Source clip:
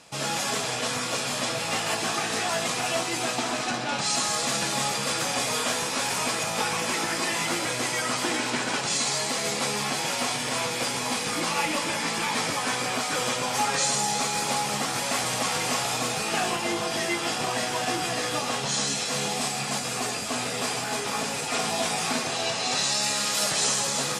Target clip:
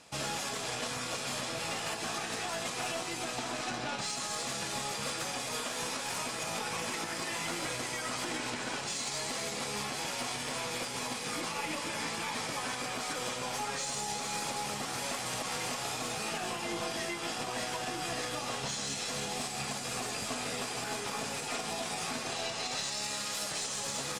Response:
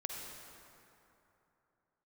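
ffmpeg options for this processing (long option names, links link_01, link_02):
-filter_complex "[0:a]asplit=2[link_01][link_02];[link_02]asetrate=22050,aresample=44100,atempo=2,volume=-13dB[link_03];[link_01][link_03]amix=inputs=2:normalize=0,alimiter=limit=-21.5dB:level=0:latency=1:release=224,aeval=exprs='0.0841*(cos(1*acos(clip(val(0)/0.0841,-1,1)))-cos(1*PI/2))+0.00422*(cos(2*acos(clip(val(0)/0.0841,-1,1)))-cos(2*PI/2))+0.00422*(cos(3*acos(clip(val(0)/0.0841,-1,1)))-cos(3*PI/2))':channel_layout=same,volume=-3.5dB"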